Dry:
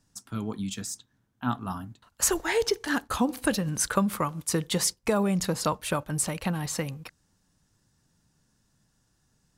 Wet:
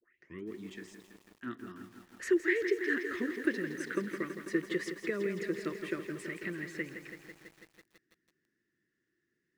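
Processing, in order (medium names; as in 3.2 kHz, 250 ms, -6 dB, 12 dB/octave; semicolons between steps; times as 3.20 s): tape start-up on the opening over 0.43 s; two resonant band-passes 820 Hz, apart 2.4 oct; bit-crushed delay 165 ms, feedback 80%, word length 10-bit, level -9 dB; trim +4 dB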